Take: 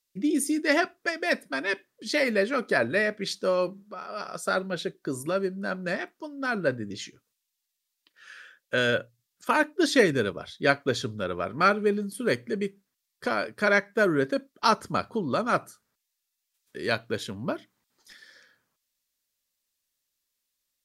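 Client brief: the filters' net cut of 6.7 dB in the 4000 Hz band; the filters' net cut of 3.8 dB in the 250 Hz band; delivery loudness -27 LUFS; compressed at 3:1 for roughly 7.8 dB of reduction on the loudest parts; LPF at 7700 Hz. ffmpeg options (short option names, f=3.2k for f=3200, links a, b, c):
-af "lowpass=7.7k,equalizer=f=250:t=o:g=-5,equalizer=f=4k:t=o:g=-8,acompressor=threshold=-27dB:ratio=3,volume=6dB"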